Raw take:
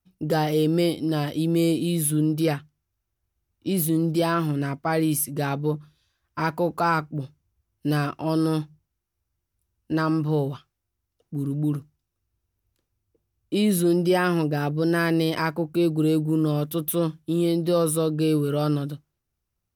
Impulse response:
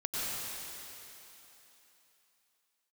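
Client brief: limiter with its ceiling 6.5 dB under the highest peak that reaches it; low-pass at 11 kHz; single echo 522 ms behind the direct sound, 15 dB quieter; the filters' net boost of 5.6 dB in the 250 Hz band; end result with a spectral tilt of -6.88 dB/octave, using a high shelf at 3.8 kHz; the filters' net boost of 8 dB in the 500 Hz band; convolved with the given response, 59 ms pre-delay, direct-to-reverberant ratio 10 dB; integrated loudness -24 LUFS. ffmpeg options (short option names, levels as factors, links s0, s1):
-filter_complex "[0:a]lowpass=11000,equalizer=f=250:t=o:g=4.5,equalizer=f=500:t=o:g=8.5,highshelf=f=3800:g=-6.5,alimiter=limit=0.282:level=0:latency=1,aecho=1:1:522:0.178,asplit=2[s0][s1];[1:a]atrim=start_sample=2205,adelay=59[s2];[s1][s2]afir=irnorm=-1:irlink=0,volume=0.15[s3];[s0][s3]amix=inputs=2:normalize=0,volume=0.708"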